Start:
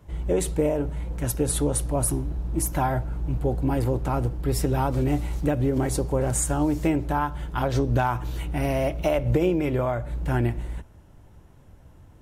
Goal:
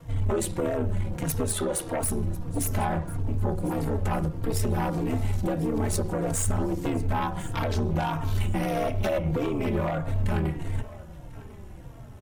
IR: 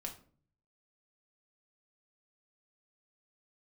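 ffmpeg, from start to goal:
-filter_complex "[0:a]asettb=1/sr,asplit=3[s0][s1][s2];[s0]atrim=end=2.774[s3];[s1]atrim=start=2.77:end=3.2,asetpts=PTS-STARTPTS,afade=t=in:d=0.004:c=qsin,afade=t=out:st=0.426:d=0.004:c=qsin,lowpass=9100[s4];[s2]atrim=start=3.196[s5];[s3][s4]acrossfade=d=0.004:c1=hsin:c2=qsin[s6];[s6][s5]acrossfade=d=0.004:c1=qsin:c2=hsin,asettb=1/sr,asplit=3[s7][s8][s9];[s7]atrim=end=6.424[s10];[s8]atrim=start=6.42:end=7.12,asetpts=PTS-STARTPTS,afade=t=in:d=0.004:c=qsin,afade=t=out:st=0.696:d=0.004:c=qsin,lowshelf=f=66:g=10.5[s11];[s9]atrim=start=7.116[s12];[s10][s11]acrossfade=d=0.004:c1=hsin:c2=qsin[s13];[s13][s12]acrossfade=d=0.004:c1=qsin:c2=hsin,bandreject=f=104.1:t=h:w=4,bandreject=f=208.2:t=h:w=4,bandreject=f=312.3:t=h:w=4,bandreject=f=416.4:t=h:w=4,bandreject=f=520.5:t=h:w=4,bandreject=f=624.6:t=h:w=4,bandreject=f=728.7:t=h:w=4,bandreject=f=832.8:t=h:w=4,bandreject=f=936.9:t=h:w=4,bandreject=f=1041:t=h:w=4,bandreject=f=1145.1:t=h:w=4,bandreject=f=1249.2:t=h:w=4,bandreject=f=1353.3:t=h:w=4,bandreject=f=1457.4:t=h:w=4,bandreject=f=1561.5:t=h:w=4,bandreject=f=1665.6:t=h:w=4,bandreject=f=1769.7:t=h:w=4,bandreject=f=1873.8:t=h:w=4,bandreject=f=1977.9:t=h:w=4,bandreject=f=2082:t=h:w=4,bandreject=f=2186.1:t=h:w=4,bandreject=f=2290.2:t=h:w=4,bandreject=f=2394.3:t=h:w=4,bandreject=f=2498.4:t=h:w=4,bandreject=f=2602.5:t=h:w=4,bandreject=f=2706.6:t=h:w=4,bandreject=f=2810.7:t=h:w=4,bandreject=f=2914.8:t=h:w=4,bandreject=f=3018.9:t=h:w=4,bandreject=f=3123:t=h:w=4,bandreject=f=3227.1:t=h:w=4,bandreject=f=3331.2:t=h:w=4,bandreject=f=3435.3:t=h:w=4,bandreject=f=3539.4:t=h:w=4,bandreject=f=3643.5:t=h:w=4,bandreject=f=3747.6:t=h:w=4,bandreject=f=3851.7:t=h:w=4,bandreject=f=3955.8:t=h:w=4,asettb=1/sr,asplit=3[s14][s15][s16];[s14]atrim=end=1.524[s17];[s15]atrim=start=1.52:end=2.03,asetpts=PTS-STARTPTS,afade=t=in:d=0.004:c=qsin,afade=t=out:st=0.506:d=0.004:c=qsin,bass=f=250:g=-14,treble=f=4000:g=-5[s18];[s16]atrim=start=2.026[s19];[s17][s18]acrossfade=d=0.004:c1=hsin:c2=qsin[s20];[s20][s19]acrossfade=d=0.004:c1=qsin:c2=hsin,acompressor=threshold=0.0447:ratio=6,aeval=exprs='val(0)*sin(2*PI*39*n/s)':c=same,aeval=exprs='0.0944*sin(PI/2*2*val(0)/0.0944)':c=same,aecho=1:1:1047|2094|3141:0.112|0.0348|0.0108,asplit=2[s21][s22];[s22]adelay=3.8,afreqshift=-1.6[s23];[s21][s23]amix=inputs=2:normalize=1,volume=1.33"

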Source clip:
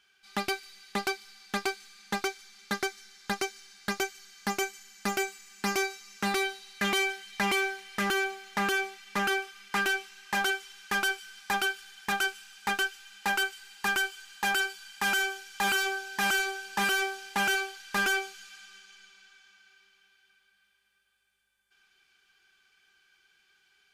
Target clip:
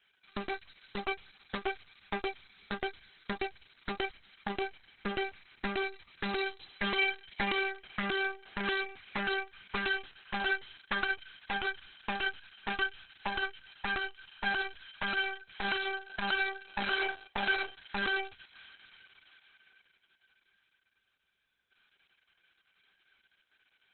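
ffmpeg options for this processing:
-af "aexciter=amount=3.3:drive=4.4:freq=9000,aeval=exprs='0.188*(cos(1*acos(clip(val(0)/0.188,-1,1)))-cos(1*PI/2))+0.0376*(cos(4*acos(clip(val(0)/0.188,-1,1)))-cos(4*PI/2))':c=same,volume=0.708" -ar 48000 -c:a libopus -b:a 6k

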